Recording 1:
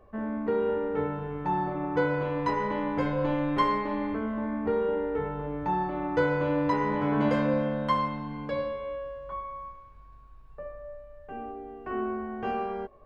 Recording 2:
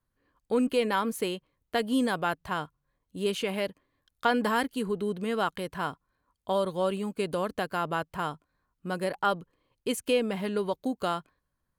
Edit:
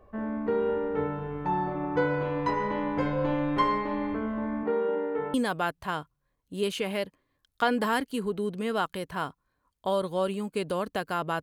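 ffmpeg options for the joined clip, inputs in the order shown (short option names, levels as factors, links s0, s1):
-filter_complex "[0:a]asettb=1/sr,asplit=3[s0][s1][s2];[s0]atrim=end=4.634[s3];[s1]atrim=start=4.63:end=5.34,asetpts=PTS-STARTPTS,afade=t=in:d=0.004:c=qsin,afade=t=out:st=0.706:d=0.004:c=qsin,highpass=220,lowpass=3600[s4];[s2]atrim=start=5.336[s5];[s3][s4]acrossfade=d=0.004:c1=hsin:c2=qsin[s6];[s6][s5]acrossfade=d=0.004:c1=qsin:c2=hsin,apad=whole_dur=11.42,atrim=end=11.42,atrim=end=5.342[s7];[1:a]atrim=start=1.968:end=8.05[s8];[s7][s8]acrossfade=d=0.004:c1=hsin:c2=hsin"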